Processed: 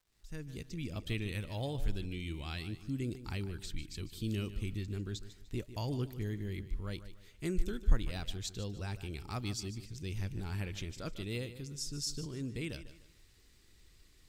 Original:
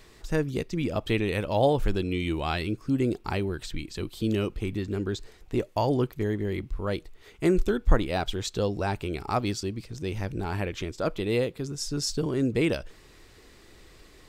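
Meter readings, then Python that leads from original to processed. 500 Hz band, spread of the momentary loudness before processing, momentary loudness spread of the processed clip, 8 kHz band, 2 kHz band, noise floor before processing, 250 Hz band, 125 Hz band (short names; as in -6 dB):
-17.0 dB, 8 LU, 7 LU, -6.0 dB, -11.0 dB, -54 dBFS, -12.5 dB, -7.0 dB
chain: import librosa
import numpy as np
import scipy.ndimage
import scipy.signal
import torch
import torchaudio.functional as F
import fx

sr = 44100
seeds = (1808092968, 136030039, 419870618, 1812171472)

p1 = fx.fade_in_head(x, sr, length_s=1.01)
p2 = fx.peak_eq(p1, sr, hz=670.0, db=-15.0, octaves=2.9)
p3 = fx.rider(p2, sr, range_db=4, speed_s=2.0)
p4 = fx.dmg_crackle(p3, sr, seeds[0], per_s=240.0, level_db=-58.0)
p5 = p4 + fx.echo_feedback(p4, sr, ms=149, feedback_pct=33, wet_db=-13.5, dry=0)
y = p5 * librosa.db_to_amplitude(-5.0)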